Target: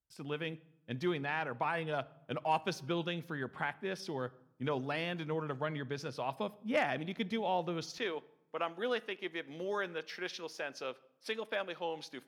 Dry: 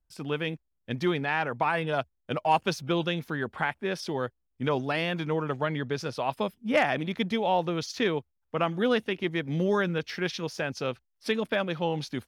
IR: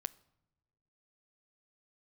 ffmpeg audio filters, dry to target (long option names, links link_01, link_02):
-filter_complex "[0:a]asetnsamples=nb_out_samples=441:pad=0,asendcmd='7.98 highpass f 390',highpass=72[link_01];[1:a]atrim=start_sample=2205[link_02];[link_01][link_02]afir=irnorm=-1:irlink=0,volume=-6dB"